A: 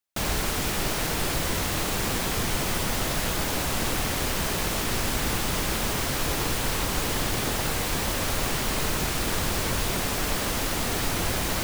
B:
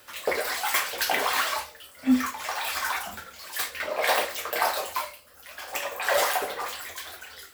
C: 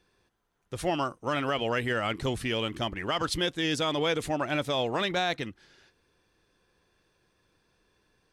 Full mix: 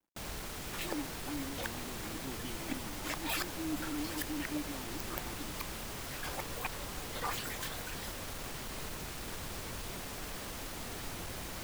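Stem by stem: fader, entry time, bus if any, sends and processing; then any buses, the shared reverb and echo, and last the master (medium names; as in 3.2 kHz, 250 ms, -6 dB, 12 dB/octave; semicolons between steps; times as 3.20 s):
-15.0 dB, 0.00 s, no send, one-sided wavefolder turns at -21 dBFS
-3.5 dB, 0.65 s, no send, reverb removal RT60 0.56 s; inverted gate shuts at -20 dBFS, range -25 dB
-9.0 dB, 0.00 s, no send, vowel filter u; tilt EQ -3.5 dB/octave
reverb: none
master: companded quantiser 8-bit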